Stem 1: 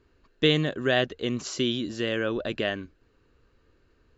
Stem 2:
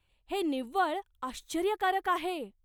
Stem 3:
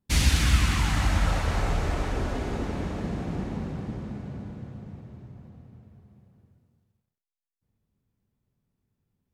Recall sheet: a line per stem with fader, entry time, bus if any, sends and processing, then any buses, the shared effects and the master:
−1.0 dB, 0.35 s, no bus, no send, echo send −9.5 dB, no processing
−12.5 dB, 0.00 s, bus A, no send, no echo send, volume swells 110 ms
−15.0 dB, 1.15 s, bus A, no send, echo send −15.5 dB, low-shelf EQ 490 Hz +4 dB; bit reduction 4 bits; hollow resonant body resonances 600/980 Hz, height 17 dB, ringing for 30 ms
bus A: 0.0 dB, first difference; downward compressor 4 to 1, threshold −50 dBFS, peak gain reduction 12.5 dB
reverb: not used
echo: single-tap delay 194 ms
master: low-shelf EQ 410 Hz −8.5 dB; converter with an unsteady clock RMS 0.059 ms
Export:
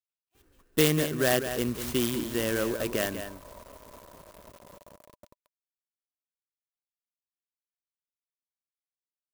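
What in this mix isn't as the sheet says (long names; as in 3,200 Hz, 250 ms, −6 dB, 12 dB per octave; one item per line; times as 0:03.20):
stem 2 −12.5 dB → −19.0 dB
master: missing low-shelf EQ 410 Hz −8.5 dB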